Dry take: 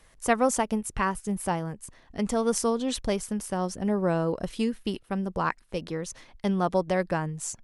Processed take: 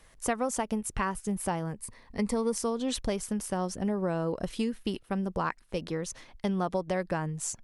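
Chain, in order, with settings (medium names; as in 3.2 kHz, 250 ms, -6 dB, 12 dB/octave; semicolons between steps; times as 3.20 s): 1.79–2.56 s: rippled EQ curve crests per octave 0.92, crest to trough 8 dB; compression 4:1, threshold -26 dBFS, peak gain reduction 9 dB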